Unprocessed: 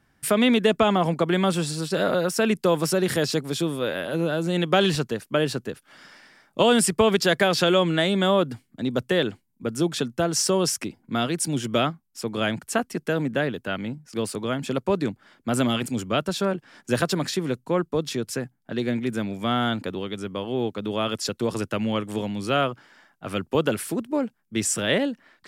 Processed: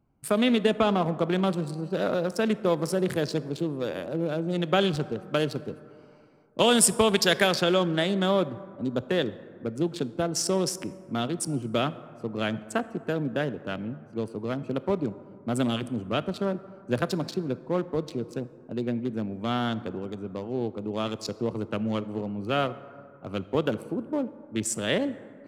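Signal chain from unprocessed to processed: Wiener smoothing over 25 samples; 5.21–7.54 high shelf 3800 Hz -> 2300 Hz +8.5 dB; plate-style reverb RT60 2.4 s, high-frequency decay 0.35×, DRR 14.5 dB; gain -3 dB

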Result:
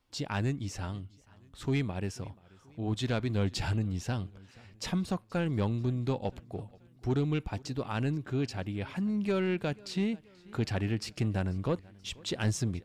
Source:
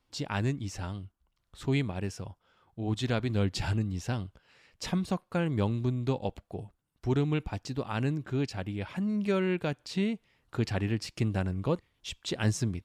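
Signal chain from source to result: soft clip -20.5 dBFS, distortion -20 dB; warbling echo 0.484 s, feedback 51%, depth 107 cents, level -24 dB

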